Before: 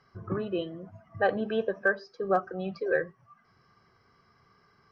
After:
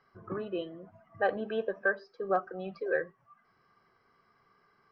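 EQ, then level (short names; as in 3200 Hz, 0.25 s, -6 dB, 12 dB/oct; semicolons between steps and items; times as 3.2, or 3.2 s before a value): air absorption 160 m; bell 79 Hz -12 dB 2.4 oct; -1.5 dB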